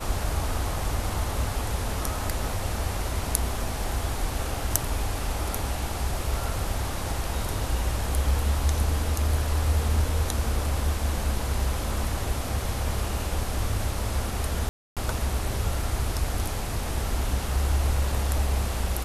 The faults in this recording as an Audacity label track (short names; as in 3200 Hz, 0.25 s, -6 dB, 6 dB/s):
14.690000	14.970000	gap 0.277 s